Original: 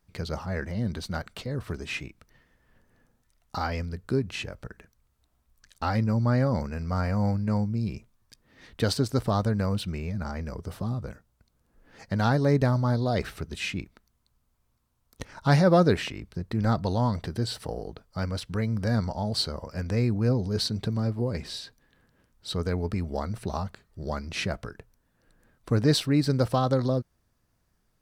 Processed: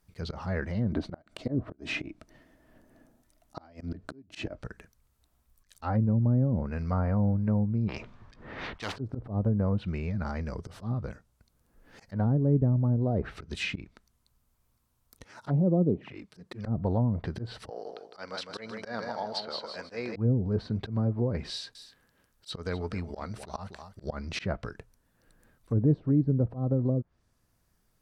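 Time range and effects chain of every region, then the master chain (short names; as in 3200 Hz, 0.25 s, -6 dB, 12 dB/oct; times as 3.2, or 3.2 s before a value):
0.92–4.58 small resonant body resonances 300/630 Hz, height 14 dB, ringing for 30 ms + flipped gate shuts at -15 dBFS, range -31 dB
7.88–8.96 median filter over 3 samples + low-pass opened by the level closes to 1700 Hz, open at -25.5 dBFS + spectral compressor 4:1
15.24–16.66 HPF 150 Hz + envelope flanger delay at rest 11.1 ms, full sweep at -19.5 dBFS
17.7–20.16 BPF 470–5700 Hz + feedback echo 0.157 s, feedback 29%, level -6 dB
21.5–24.04 low shelf 410 Hz -7 dB + echo 0.249 s -13.5 dB
whole clip: treble ducked by the level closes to 350 Hz, closed at -20 dBFS; high shelf 9800 Hz +8 dB; auto swell 0.103 s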